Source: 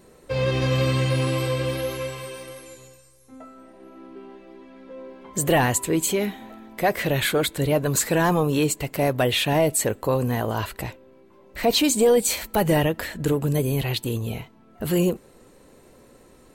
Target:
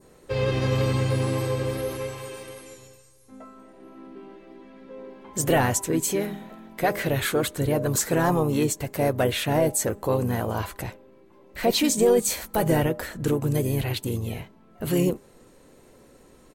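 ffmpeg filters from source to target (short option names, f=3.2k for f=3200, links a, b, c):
-filter_complex "[0:a]bandreject=f=202.8:t=h:w=4,bandreject=f=405.6:t=h:w=4,bandreject=f=608.4:t=h:w=4,bandreject=f=811.2:t=h:w=4,bandreject=f=1.014k:t=h:w=4,bandreject=f=1.2168k:t=h:w=4,asplit=2[a][b];[b]asetrate=35002,aresample=44100,atempo=1.25992,volume=-8dB[c];[a][c]amix=inputs=2:normalize=0,adynamicequalizer=threshold=0.00794:dfrequency=2900:dqfactor=1.2:tfrequency=2900:tqfactor=1.2:attack=5:release=100:ratio=0.375:range=3.5:mode=cutabove:tftype=bell,volume=-2dB"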